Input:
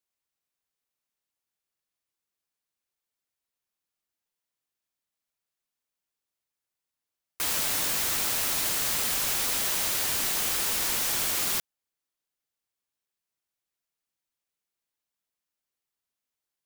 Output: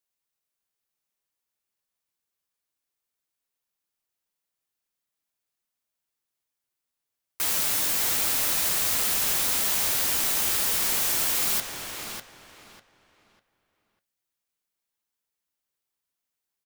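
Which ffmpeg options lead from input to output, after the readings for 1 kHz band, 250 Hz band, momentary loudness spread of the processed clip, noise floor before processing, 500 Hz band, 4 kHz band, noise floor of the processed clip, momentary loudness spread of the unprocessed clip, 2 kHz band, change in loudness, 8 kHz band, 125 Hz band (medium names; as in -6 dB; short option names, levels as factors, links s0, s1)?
+1.0 dB, +1.0 dB, 12 LU, under -85 dBFS, +1.0 dB, +1.0 dB, -85 dBFS, 1 LU, +1.0 dB, +3.0 dB, +2.0 dB, +1.0 dB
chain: -filter_complex "[0:a]highshelf=f=8000:g=4.5,flanger=delay=7.8:depth=4.7:regen=75:speed=0.16:shape=triangular,asplit=2[s0][s1];[s1]adelay=598,lowpass=f=3700:p=1,volume=0.631,asplit=2[s2][s3];[s3]adelay=598,lowpass=f=3700:p=1,volume=0.28,asplit=2[s4][s5];[s5]adelay=598,lowpass=f=3700:p=1,volume=0.28,asplit=2[s6][s7];[s7]adelay=598,lowpass=f=3700:p=1,volume=0.28[s8];[s2][s4][s6][s8]amix=inputs=4:normalize=0[s9];[s0][s9]amix=inputs=2:normalize=0,volume=1.58"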